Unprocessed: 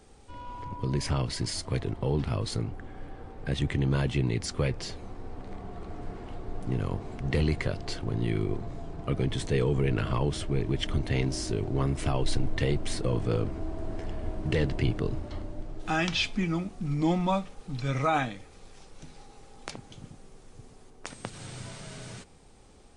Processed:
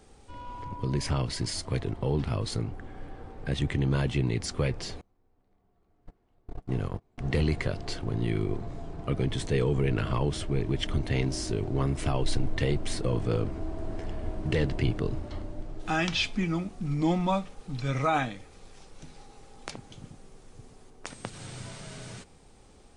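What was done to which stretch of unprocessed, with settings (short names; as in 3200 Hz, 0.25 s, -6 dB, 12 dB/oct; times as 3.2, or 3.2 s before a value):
5.01–7.18 gate -31 dBFS, range -30 dB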